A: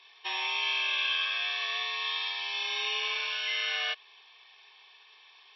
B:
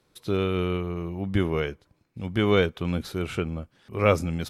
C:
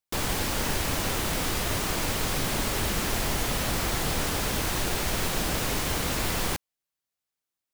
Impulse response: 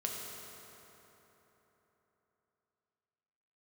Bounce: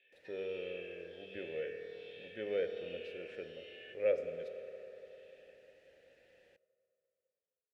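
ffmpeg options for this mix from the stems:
-filter_complex "[0:a]acompressor=threshold=-42dB:ratio=2.5,asplit=2[a][b];[b]afreqshift=-1.3[c];[a][c]amix=inputs=2:normalize=1,volume=-4.5dB,asplit=2[d][e];[e]volume=-3dB[f];[1:a]bandreject=f=2.8k:w=12,volume=-9dB,asplit=2[g][h];[h]volume=-3.5dB[i];[2:a]acrossover=split=120[j][k];[k]acompressor=threshold=-36dB:ratio=3[l];[j][l]amix=inputs=2:normalize=0,volume=-17.5dB,asplit=2[m][n];[n]volume=-22.5dB[o];[3:a]atrim=start_sample=2205[p];[f][i][o]amix=inputs=3:normalize=0[q];[q][p]afir=irnorm=-1:irlink=0[r];[d][g][m][r]amix=inputs=4:normalize=0,asplit=3[s][t][u];[s]bandpass=f=530:t=q:w=8,volume=0dB[v];[t]bandpass=f=1.84k:t=q:w=8,volume=-6dB[w];[u]bandpass=f=2.48k:t=q:w=8,volume=-9dB[x];[v][w][x]amix=inputs=3:normalize=0"

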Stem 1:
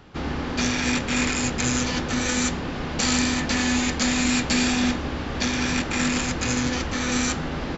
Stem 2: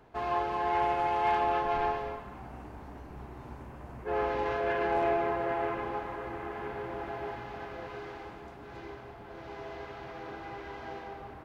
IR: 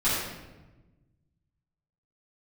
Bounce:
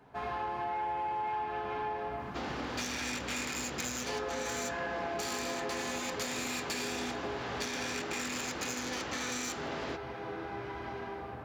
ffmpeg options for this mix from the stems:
-filter_complex "[0:a]bass=f=250:g=-12,treble=f=4k:g=1,aeval=exprs='clip(val(0),-1,0.0422)':c=same,adelay=2200,volume=-4.5dB[a];[1:a]volume=-5dB,asplit=2[b][c];[c]volume=-8dB[d];[2:a]atrim=start_sample=2205[e];[d][e]afir=irnorm=-1:irlink=0[f];[a][b][f]amix=inputs=3:normalize=0,highpass=79,acompressor=threshold=-33dB:ratio=6"

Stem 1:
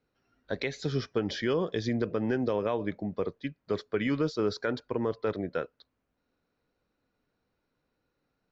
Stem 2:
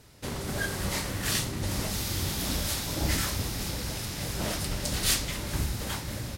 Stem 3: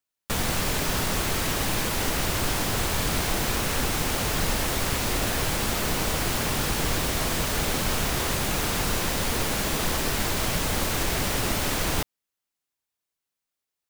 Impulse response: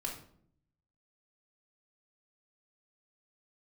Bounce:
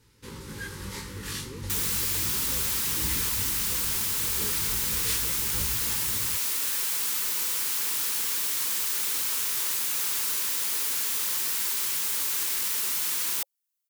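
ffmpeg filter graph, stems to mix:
-filter_complex "[0:a]asplit=2[a][b];[b]adelay=4.6,afreqshift=0.64[c];[a][c]amix=inputs=2:normalize=1,volume=-16dB[d];[1:a]flanger=delay=18:depth=2.8:speed=0.35,volume=-3.5dB[e];[2:a]highpass=f=1.1k:p=1,crystalizer=i=2.5:c=0,adelay=1400,volume=-8.5dB[f];[d][e][f]amix=inputs=3:normalize=0,asuperstop=centerf=670:order=12:qfactor=2.4"

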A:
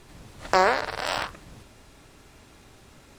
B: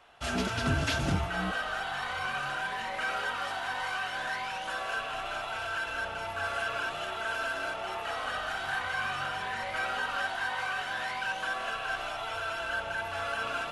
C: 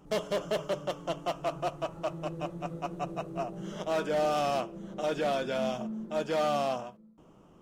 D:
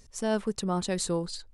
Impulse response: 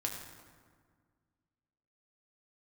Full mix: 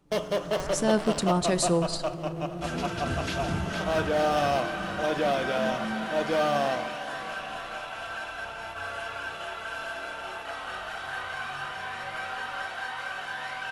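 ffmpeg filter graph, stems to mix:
-filter_complex "[0:a]acompressor=threshold=-25dB:ratio=6,volume=-10dB[a];[1:a]adelay=2400,volume=-3.5dB,asplit=2[b][c];[c]volume=-5dB[d];[2:a]bandreject=f=7.3k:w=5.8,volume=0.5dB,asplit=3[e][f][g];[f]volume=-9.5dB[h];[g]volume=-12.5dB[i];[3:a]acompressor=mode=upward:threshold=-31dB:ratio=2.5,adelay=600,volume=2dB,asplit=2[j][k];[k]volume=-11dB[l];[4:a]atrim=start_sample=2205[m];[h][l]amix=inputs=2:normalize=0[n];[n][m]afir=irnorm=-1:irlink=0[o];[d][i]amix=inputs=2:normalize=0,aecho=0:1:459|918|1377|1836|2295|2754|3213|3672|4131:1|0.59|0.348|0.205|0.121|0.0715|0.0422|0.0249|0.0147[p];[a][b][e][j][o][p]amix=inputs=6:normalize=0,agate=range=-13dB:threshold=-38dB:ratio=16:detection=peak"

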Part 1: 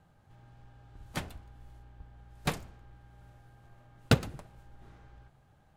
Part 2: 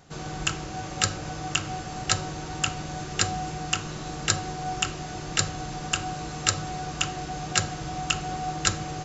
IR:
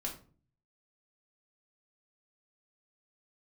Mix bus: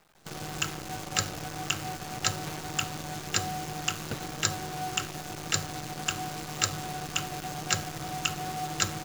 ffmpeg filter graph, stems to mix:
-filter_complex "[0:a]asplit=2[a][b];[b]highpass=f=720:p=1,volume=23dB,asoftclip=type=tanh:threshold=-32.5dB[c];[a][c]amix=inputs=2:normalize=0,lowpass=f=3.4k:p=1,volume=-6dB,volume=-8dB[d];[1:a]highpass=81,adelay=150,volume=-3.5dB[e];[d][e]amix=inputs=2:normalize=0,acrusher=bits=7:dc=4:mix=0:aa=0.000001"

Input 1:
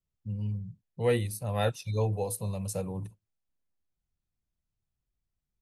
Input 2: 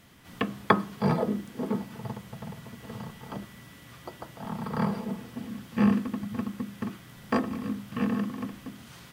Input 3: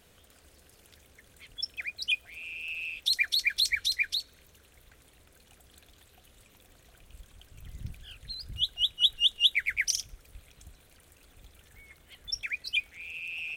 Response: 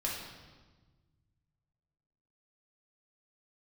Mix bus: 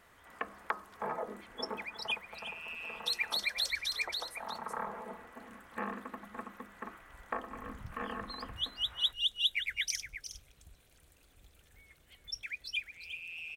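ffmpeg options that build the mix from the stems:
-filter_complex "[0:a]acompressor=threshold=-30dB:ratio=6,adelay=2000,volume=-15dB[a];[1:a]lowpass=f=2k:w=0.5412,lowpass=f=2k:w=1.3066,volume=0.5dB[b];[2:a]volume=-7dB,asplit=2[c][d];[d]volume=-9.5dB[e];[a][b]amix=inputs=2:normalize=0,highpass=660,acompressor=threshold=-34dB:ratio=4,volume=0dB[f];[e]aecho=0:1:361:1[g];[c][f][g]amix=inputs=3:normalize=0"

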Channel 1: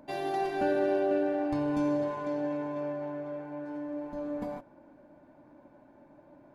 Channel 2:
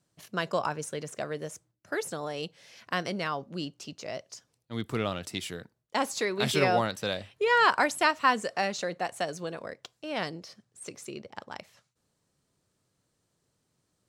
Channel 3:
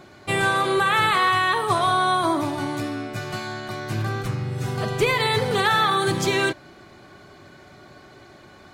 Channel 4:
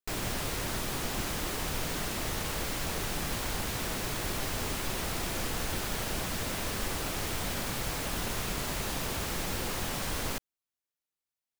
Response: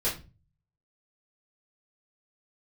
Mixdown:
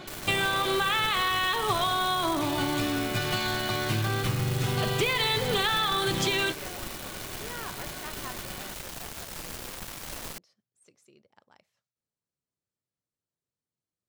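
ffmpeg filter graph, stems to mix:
-filter_complex "[1:a]volume=-19.5dB[a];[2:a]equalizer=f=3.2k:t=o:w=0.88:g=9,acompressor=threshold=-26dB:ratio=6,volume=2dB[b];[3:a]acrusher=bits=4:mix=0:aa=0.000001,volume=-7dB[c];[a][b][c]amix=inputs=3:normalize=0"

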